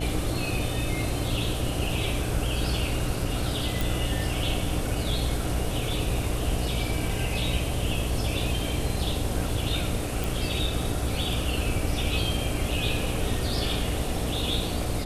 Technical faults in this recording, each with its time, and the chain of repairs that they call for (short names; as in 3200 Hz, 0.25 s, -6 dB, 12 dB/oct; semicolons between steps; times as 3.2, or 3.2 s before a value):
buzz 60 Hz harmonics 13 -32 dBFS
3.81 pop
10.24 pop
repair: de-click; de-hum 60 Hz, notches 13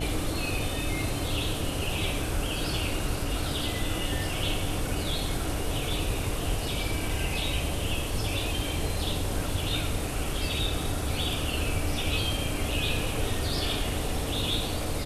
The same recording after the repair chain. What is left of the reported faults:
none